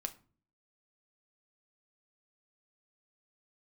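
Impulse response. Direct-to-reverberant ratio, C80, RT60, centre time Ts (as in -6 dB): 7.0 dB, 22.0 dB, 0.40 s, 5 ms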